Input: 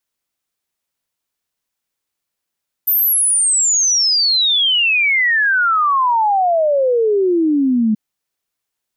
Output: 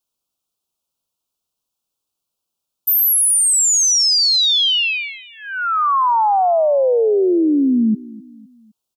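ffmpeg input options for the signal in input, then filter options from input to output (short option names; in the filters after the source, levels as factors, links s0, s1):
-f lavfi -i "aevalsrc='0.266*clip(min(t,5.08-t)/0.01,0,1)*sin(2*PI*14000*5.08/log(210/14000)*(exp(log(210/14000)*t/5.08)-1))':d=5.08:s=44100"
-af "asuperstop=centerf=1900:order=4:qfactor=1.3,aecho=1:1:256|512|768:0.1|0.046|0.0212"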